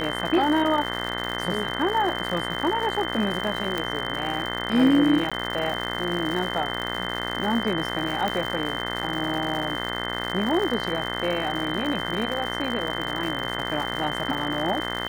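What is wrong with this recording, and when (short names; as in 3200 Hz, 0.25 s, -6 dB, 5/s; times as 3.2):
buzz 60 Hz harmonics 35 -31 dBFS
crackle 180/s -29 dBFS
tone 3100 Hz -32 dBFS
3.78 pop
5.3–5.32 gap 16 ms
8.28 pop -13 dBFS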